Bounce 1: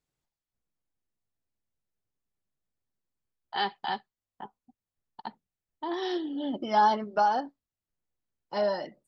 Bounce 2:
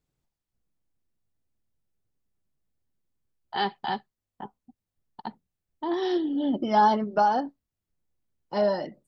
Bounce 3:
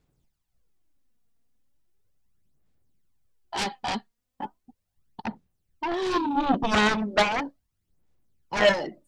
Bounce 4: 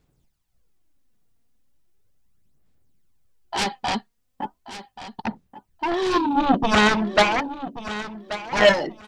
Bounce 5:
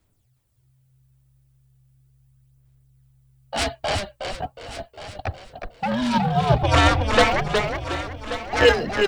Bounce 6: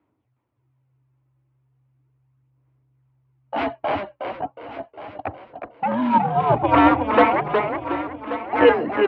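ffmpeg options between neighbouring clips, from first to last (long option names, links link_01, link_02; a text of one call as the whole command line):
ffmpeg -i in.wav -af "lowshelf=frequency=460:gain=9" out.wav
ffmpeg -i in.wav -af "aphaser=in_gain=1:out_gain=1:delay=4.3:decay=0.53:speed=0.37:type=sinusoidal,aeval=exprs='0.335*(cos(1*acos(clip(val(0)/0.335,-1,1)))-cos(1*PI/2))+0.15*(cos(7*acos(clip(val(0)/0.335,-1,1)))-cos(7*PI/2))':channel_layout=same,volume=-2.5dB" out.wav
ffmpeg -i in.wav -af "aecho=1:1:1132|2264:0.211|0.038,volume=4.5dB" out.wav
ffmpeg -i in.wav -filter_complex "[0:a]asplit=5[link_01][link_02][link_03][link_04][link_05];[link_02]adelay=364,afreqshift=-70,volume=-5.5dB[link_06];[link_03]adelay=728,afreqshift=-140,volume=-14.9dB[link_07];[link_04]adelay=1092,afreqshift=-210,volume=-24.2dB[link_08];[link_05]adelay=1456,afreqshift=-280,volume=-33.6dB[link_09];[link_01][link_06][link_07][link_08][link_09]amix=inputs=5:normalize=0,afreqshift=-130,aexciter=amount=1.3:drive=6.8:freq=8300" out.wav
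ffmpeg -i in.wav -af "highpass=170,equalizer=frequency=180:width_type=q:width=4:gain=-6,equalizer=frequency=300:width_type=q:width=4:gain=9,equalizer=frequency=970:width_type=q:width=4:gain=7,equalizer=frequency=1700:width_type=q:width=4:gain=-5,lowpass=frequency=2300:width=0.5412,lowpass=frequency=2300:width=1.3066,volume=1dB" out.wav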